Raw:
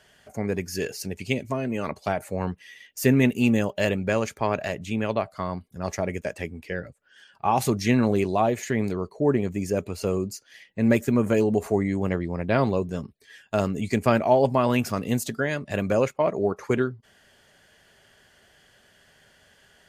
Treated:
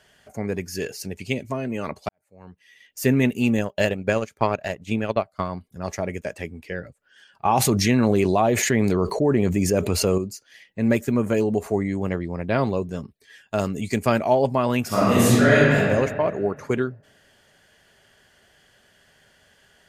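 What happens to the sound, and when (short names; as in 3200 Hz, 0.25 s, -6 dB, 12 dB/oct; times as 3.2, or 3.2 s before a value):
2.09–3.02 fade in quadratic
3.58–5.49 transient shaper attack +6 dB, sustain -12 dB
7.45–10.18 fast leveller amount 70%
13.59–14.35 high shelf 4100 Hz +5.5 dB
14.87–15.74 reverb throw, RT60 1.8 s, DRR -11.5 dB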